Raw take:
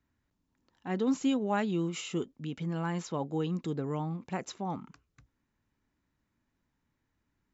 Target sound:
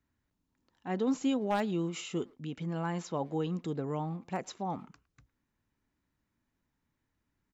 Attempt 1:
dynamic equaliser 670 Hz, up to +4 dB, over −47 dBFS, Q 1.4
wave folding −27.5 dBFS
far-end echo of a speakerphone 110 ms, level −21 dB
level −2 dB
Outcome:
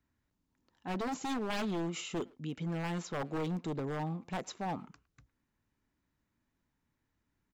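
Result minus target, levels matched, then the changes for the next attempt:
wave folding: distortion +21 dB
change: wave folding −19 dBFS

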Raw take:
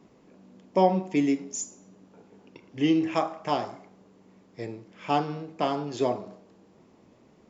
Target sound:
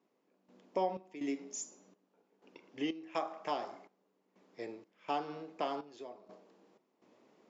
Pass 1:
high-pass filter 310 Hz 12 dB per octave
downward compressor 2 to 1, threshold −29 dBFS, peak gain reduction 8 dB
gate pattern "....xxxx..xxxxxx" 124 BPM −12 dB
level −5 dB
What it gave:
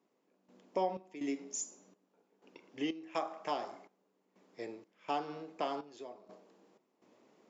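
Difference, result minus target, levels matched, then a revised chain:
8,000 Hz band +3.0 dB
high-pass filter 310 Hz 12 dB per octave
downward compressor 2 to 1, threshold −29 dBFS, peak gain reduction 8 dB
low-pass filter 6,800 Hz 12 dB per octave
gate pattern "....xxxx..xxxxxx" 124 BPM −12 dB
level −5 dB

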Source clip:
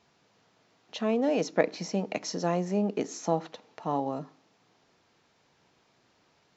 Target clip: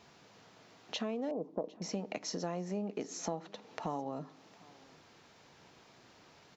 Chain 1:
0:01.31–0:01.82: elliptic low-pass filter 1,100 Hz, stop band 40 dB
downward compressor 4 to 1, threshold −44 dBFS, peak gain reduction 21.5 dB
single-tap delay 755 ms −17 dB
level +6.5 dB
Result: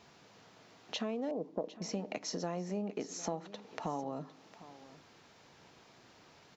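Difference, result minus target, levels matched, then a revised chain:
echo-to-direct +7 dB
0:01.31–0:01.82: elliptic low-pass filter 1,100 Hz, stop band 40 dB
downward compressor 4 to 1, threshold −44 dBFS, peak gain reduction 21.5 dB
single-tap delay 755 ms −24 dB
level +6.5 dB

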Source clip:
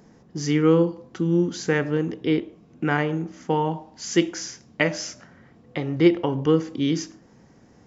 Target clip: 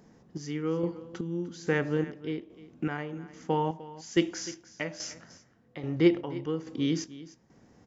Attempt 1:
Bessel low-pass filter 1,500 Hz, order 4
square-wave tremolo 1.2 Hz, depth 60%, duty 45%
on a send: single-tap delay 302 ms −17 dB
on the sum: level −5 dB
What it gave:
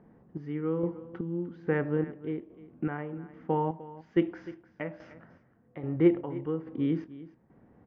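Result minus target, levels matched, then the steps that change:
2,000 Hz band −4.5 dB
remove: Bessel low-pass filter 1,500 Hz, order 4

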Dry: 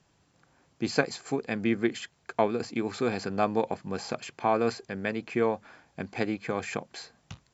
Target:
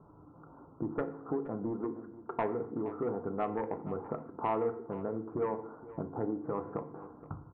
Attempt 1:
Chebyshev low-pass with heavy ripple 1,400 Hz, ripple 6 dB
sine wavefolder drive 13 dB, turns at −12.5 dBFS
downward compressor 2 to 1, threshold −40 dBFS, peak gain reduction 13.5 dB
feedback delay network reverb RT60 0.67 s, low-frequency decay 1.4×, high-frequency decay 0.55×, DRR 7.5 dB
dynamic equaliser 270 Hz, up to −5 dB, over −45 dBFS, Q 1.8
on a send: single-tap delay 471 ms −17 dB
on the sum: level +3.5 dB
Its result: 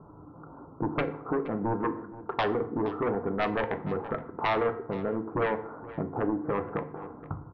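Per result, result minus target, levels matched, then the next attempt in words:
sine wavefolder: distortion +13 dB; downward compressor: peak gain reduction −3 dB
Chebyshev low-pass with heavy ripple 1,400 Hz, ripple 6 dB
sine wavefolder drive 6 dB, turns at −12.5 dBFS
downward compressor 2 to 1, threshold −40 dBFS, peak gain reduction 13.5 dB
feedback delay network reverb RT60 0.67 s, low-frequency decay 1.4×, high-frequency decay 0.55×, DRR 7.5 dB
dynamic equaliser 270 Hz, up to −5 dB, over −45 dBFS, Q 1.8
on a send: single-tap delay 471 ms −17 dB
on the sum: level +3.5 dB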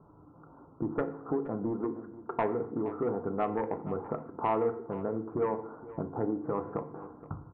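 downward compressor: peak gain reduction −3 dB
Chebyshev low-pass with heavy ripple 1,400 Hz, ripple 6 dB
sine wavefolder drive 6 dB, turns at −12.5 dBFS
downward compressor 2 to 1, threshold −46 dBFS, peak gain reduction 16.5 dB
feedback delay network reverb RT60 0.67 s, low-frequency decay 1.4×, high-frequency decay 0.55×, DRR 7.5 dB
dynamic equaliser 270 Hz, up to −5 dB, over −45 dBFS, Q 1.8
on a send: single-tap delay 471 ms −17 dB
on the sum: level +3.5 dB

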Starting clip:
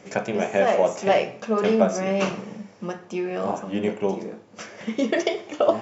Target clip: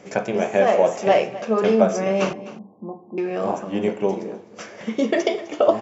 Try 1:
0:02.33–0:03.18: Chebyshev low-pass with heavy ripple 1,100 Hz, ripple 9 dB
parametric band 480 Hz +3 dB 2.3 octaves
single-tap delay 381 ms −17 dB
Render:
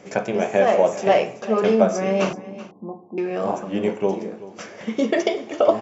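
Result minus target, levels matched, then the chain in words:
echo 125 ms late
0:02.33–0:03.18: Chebyshev low-pass with heavy ripple 1,100 Hz, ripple 9 dB
parametric band 480 Hz +3 dB 2.3 octaves
single-tap delay 256 ms −17 dB

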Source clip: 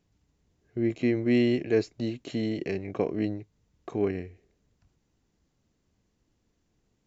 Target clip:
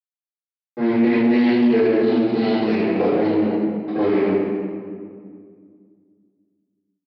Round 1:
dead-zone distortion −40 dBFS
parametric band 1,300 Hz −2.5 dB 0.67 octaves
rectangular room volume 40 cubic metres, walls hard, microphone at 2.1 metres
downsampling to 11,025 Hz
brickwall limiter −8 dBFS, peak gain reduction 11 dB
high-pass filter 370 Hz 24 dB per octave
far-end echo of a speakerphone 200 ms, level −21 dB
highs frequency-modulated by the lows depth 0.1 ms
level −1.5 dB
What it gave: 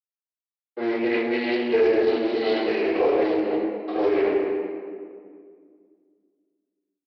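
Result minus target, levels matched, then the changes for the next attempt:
125 Hz band −12.0 dB; dead-zone distortion: distortion −5 dB
change: dead-zone distortion −34 dBFS
change: high-pass filter 160 Hz 24 dB per octave

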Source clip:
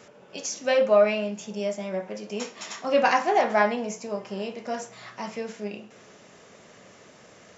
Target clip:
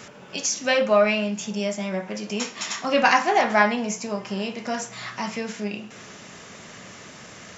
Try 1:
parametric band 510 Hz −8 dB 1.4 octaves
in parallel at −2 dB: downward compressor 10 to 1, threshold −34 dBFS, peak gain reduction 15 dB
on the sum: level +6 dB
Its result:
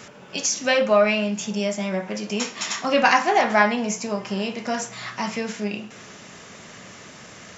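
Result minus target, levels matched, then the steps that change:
downward compressor: peak gain reduction −8 dB
change: downward compressor 10 to 1, threshold −43 dBFS, peak gain reduction 23.5 dB

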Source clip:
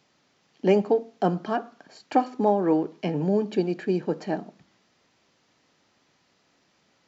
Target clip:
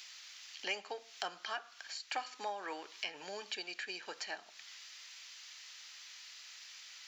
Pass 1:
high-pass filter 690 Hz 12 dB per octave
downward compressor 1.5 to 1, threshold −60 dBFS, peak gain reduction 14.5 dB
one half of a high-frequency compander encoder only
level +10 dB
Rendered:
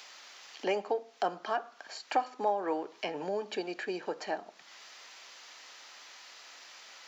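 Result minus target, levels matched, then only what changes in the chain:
2,000 Hz band −8.0 dB
change: high-pass filter 2,200 Hz 12 dB per octave

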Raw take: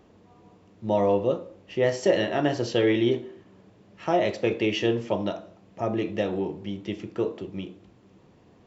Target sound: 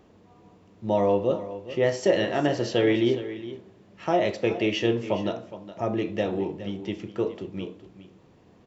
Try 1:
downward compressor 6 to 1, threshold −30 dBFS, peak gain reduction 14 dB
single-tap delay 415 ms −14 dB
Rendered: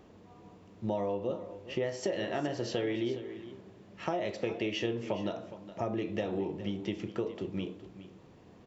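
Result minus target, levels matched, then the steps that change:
downward compressor: peak gain reduction +14 dB
remove: downward compressor 6 to 1, threshold −30 dBFS, peak gain reduction 14 dB

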